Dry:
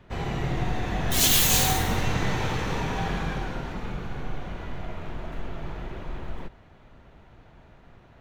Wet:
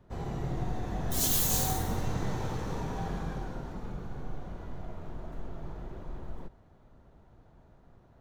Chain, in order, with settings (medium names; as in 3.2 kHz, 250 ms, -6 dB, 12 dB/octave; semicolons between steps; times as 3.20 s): peaking EQ 2.5 kHz -12 dB 1.5 oct; trim -5.5 dB